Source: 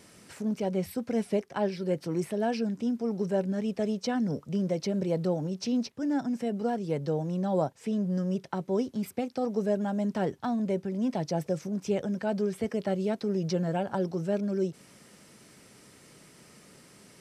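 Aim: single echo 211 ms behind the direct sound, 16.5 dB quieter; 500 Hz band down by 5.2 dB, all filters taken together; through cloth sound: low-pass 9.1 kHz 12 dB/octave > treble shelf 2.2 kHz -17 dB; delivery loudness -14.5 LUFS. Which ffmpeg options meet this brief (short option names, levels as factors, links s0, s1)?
-af "lowpass=9100,equalizer=f=500:t=o:g=-5.5,highshelf=f=2200:g=-17,aecho=1:1:211:0.15,volume=7.94"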